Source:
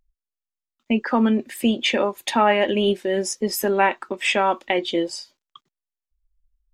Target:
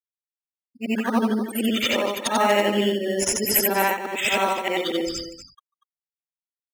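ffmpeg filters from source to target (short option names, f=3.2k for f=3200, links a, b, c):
-filter_complex "[0:a]afftfilt=real='re':imag='-im':win_size=8192:overlap=0.75,afftfilt=real='re*gte(hypot(re,im),0.0251)':imag='im*gte(hypot(re,im),0.0251)':win_size=1024:overlap=0.75,aemphasis=mode=production:type=75fm,asplit=2[a][b];[b]acrusher=samples=9:mix=1:aa=0.000001,volume=-8.5dB[c];[a][c]amix=inputs=2:normalize=0,aecho=1:1:240:0.251"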